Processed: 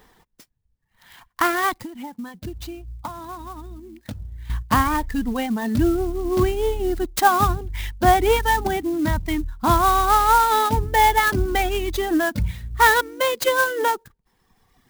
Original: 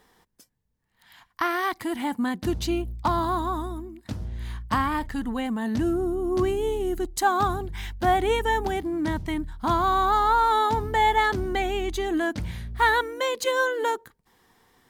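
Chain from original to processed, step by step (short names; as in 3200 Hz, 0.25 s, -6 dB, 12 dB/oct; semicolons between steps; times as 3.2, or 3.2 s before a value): low shelf 70 Hz +8 dB; 1.76–4.5 compressor 10:1, threshold -35 dBFS, peak gain reduction 16.5 dB; reverb removal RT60 1.8 s; clock jitter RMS 0.027 ms; gain +6 dB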